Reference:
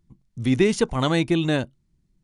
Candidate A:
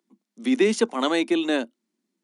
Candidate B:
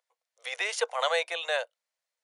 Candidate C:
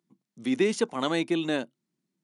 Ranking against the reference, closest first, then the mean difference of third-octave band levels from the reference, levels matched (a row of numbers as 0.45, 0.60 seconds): C, A, B; 2.5, 4.5, 13.0 decibels